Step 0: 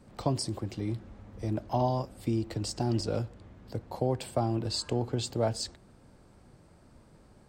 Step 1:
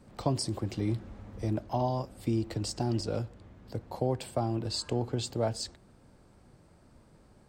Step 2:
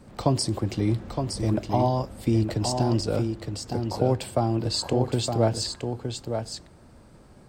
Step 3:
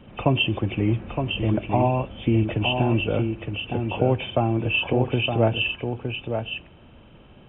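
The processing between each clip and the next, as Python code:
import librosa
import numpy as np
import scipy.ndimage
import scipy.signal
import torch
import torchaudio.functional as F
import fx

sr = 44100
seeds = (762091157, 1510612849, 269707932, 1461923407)

y1 = fx.rider(x, sr, range_db=10, speed_s=0.5)
y2 = y1 + 10.0 ** (-6.0 / 20.0) * np.pad(y1, (int(915 * sr / 1000.0), 0))[:len(y1)]
y2 = y2 * librosa.db_to_amplitude(6.5)
y3 = fx.freq_compress(y2, sr, knee_hz=2200.0, ratio=4.0)
y3 = y3 * librosa.db_to_amplitude(2.0)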